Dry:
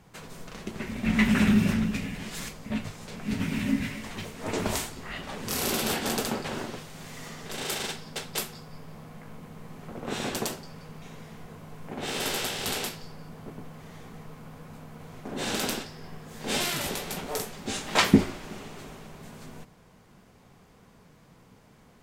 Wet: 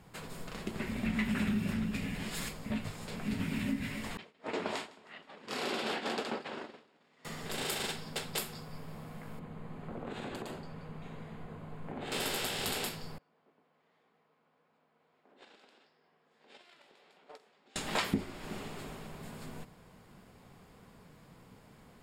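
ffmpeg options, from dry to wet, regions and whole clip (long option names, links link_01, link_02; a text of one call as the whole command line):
ffmpeg -i in.wav -filter_complex "[0:a]asettb=1/sr,asplit=3[link_01][link_02][link_03];[link_01]atrim=end=4.174[link_04];[link_02]atrim=start=4.17:end=7.25,asetpts=PTS-STARTPTS,afade=type=in:duration=0.004:curve=qsin,afade=type=out:start_time=3.076:duration=0.004:curve=qsin,agate=range=-33dB:threshold=-29dB:ratio=3:release=100:detection=peak,highpass=280,lowpass=4100,aecho=1:1:157|314|471|628:0.0708|0.0375|0.0199|0.0105,atrim=end_sample=135828[link_05];[link_03]atrim=start=7.246[link_06];[link_04][link_05]acrossfade=duration=0.004:curve1=hsin:curve2=qsin[link_07];[link_07][link_06]acrossfade=duration=0.004:curve1=qsin:curve2=hsin,asettb=1/sr,asplit=3[link_08][link_09][link_10];[link_08]atrim=end=9.394[link_11];[link_09]atrim=start=9.39:end=12.12,asetpts=PTS-STARTPTS,afade=type=in:duration=0.004:curve=qsin,afade=type=out:start_time=2.726:duration=0.004:curve=qsin,aemphasis=mode=reproduction:type=75kf,bandreject=frequency=5400:width=5.9,acompressor=threshold=-35dB:ratio=12:attack=3.2:release=140:knee=1:detection=peak[link_12];[link_10]atrim=start=12.116[link_13];[link_11][link_12]acrossfade=duration=0.004:curve1=hsin:curve2=qsin[link_14];[link_14][link_13]acrossfade=duration=0.004:curve1=qsin:curve2=hsin,asettb=1/sr,asplit=3[link_15][link_16][link_17];[link_15]atrim=end=13.184[link_18];[link_16]atrim=start=13.18:end=17.76,asetpts=PTS-STARTPTS,afade=type=in:duration=0.004:curve=qsin,afade=type=out:start_time=4.576:duration=0.004:curve=qsin,acompressor=threshold=-33dB:ratio=10:attack=3.2:release=140:knee=1:detection=peak,highpass=370,lowpass=4100,agate=range=-21dB:threshold=-38dB:ratio=16:release=100:detection=peak[link_19];[link_17]atrim=start=17.756[link_20];[link_18][link_19]acrossfade=duration=0.004:curve1=hsin:curve2=qsin[link_21];[link_21][link_20]acrossfade=duration=0.004:curve1=qsin:curve2=hsin,bandreject=frequency=6000:width=6.1,acompressor=threshold=-31dB:ratio=3,volume=-1dB" out.wav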